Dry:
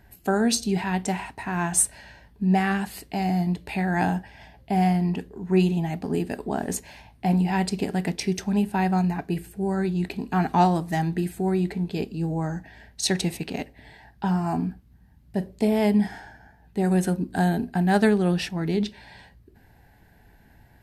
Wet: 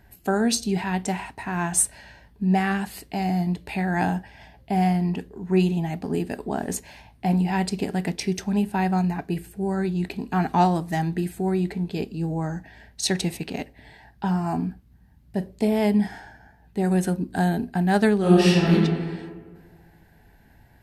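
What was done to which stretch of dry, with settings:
18.18–18.72 reverb throw, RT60 1.7 s, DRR -7.5 dB

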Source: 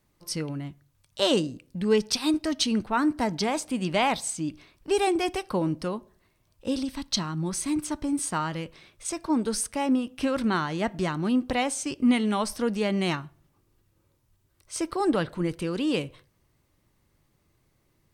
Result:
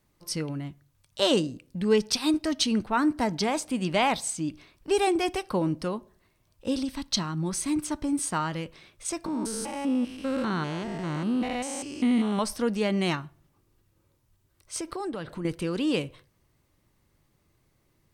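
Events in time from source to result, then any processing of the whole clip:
9.26–12.39 stepped spectrum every 0.2 s
14.8–15.45 compressor, threshold -30 dBFS

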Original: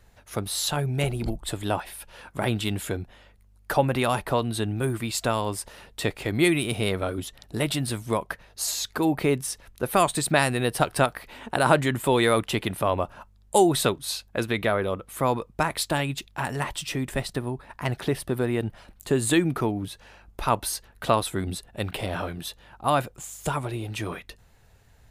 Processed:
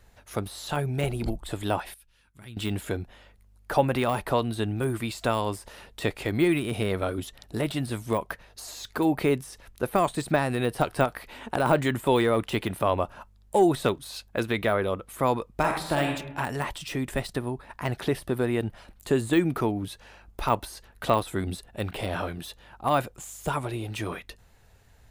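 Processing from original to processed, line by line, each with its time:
1.94–2.57 passive tone stack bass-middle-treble 6-0-2
15.5–16.14 reverb throw, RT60 0.83 s, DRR 2.5 dB
whole clip: de-esser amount 75%; bell 140 Hz -2.5 dB

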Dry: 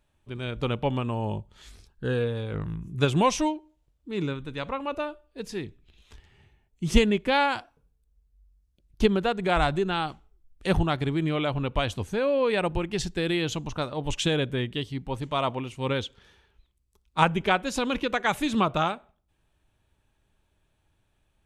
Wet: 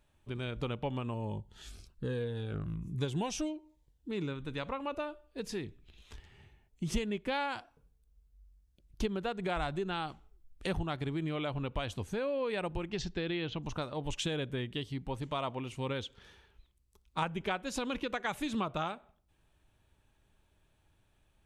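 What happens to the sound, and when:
1.14–4.1 cascading phaser falling 1.2 Hz
12.9–13.62 LPF 7000 Hz -> 3400 Hz 24 dB/oct
whole clip: compressor 2.5:1, threshold -36 dBFS

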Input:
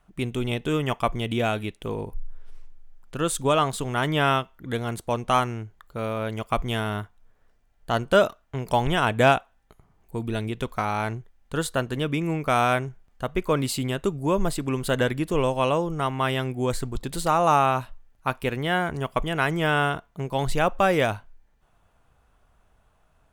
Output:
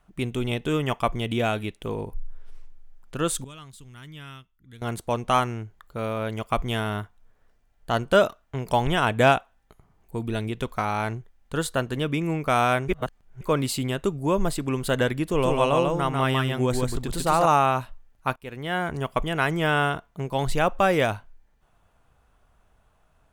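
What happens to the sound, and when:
3.44–4.82 passive tone stack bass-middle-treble 6-0-2
12.88–13.41 reverse
15.28–17.46 echo 0.144 s -3 dB
18.36–18.94 fade in, from -20.5 dB

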